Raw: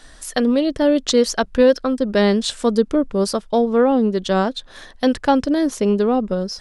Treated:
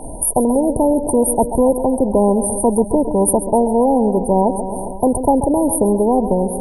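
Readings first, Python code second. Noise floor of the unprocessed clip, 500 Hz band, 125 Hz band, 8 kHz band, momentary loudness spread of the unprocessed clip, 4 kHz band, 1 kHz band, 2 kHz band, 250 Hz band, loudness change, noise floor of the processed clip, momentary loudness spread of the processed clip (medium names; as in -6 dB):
-45 dBFS, +2.0 dB, no reading, +10.0 dB, 5 LU, under -40 dB, +5.5 dB, under -40 dB, +2.0 dB, +2.5 dB, -27 dBFS, 3 LU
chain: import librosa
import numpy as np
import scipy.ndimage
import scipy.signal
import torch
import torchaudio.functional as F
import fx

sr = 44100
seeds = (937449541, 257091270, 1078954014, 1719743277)

p1 = fx.brickwall_bandstop(x, sr, low_hz=1000.0, high_hz=8700.0)
p2 = p1 + fx.echo_feedback(p1, sr, ms=135, feedback_pct=58, wet_db=-18, dry=0)
p3 = fx.spectral_comp(p2, sr, ratio=2.0)
y = F.gain(torch.from_numpy(p3), 3.5).numpy()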